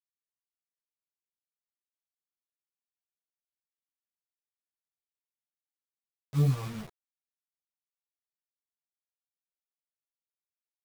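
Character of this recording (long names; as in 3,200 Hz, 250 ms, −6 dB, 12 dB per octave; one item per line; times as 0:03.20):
phaser sweep stages 2, 3.3 Hz, lowest notch 210–1,100 Hz
a quantiser's noise floor 8 bits, dither none
a shimmering, thickened sound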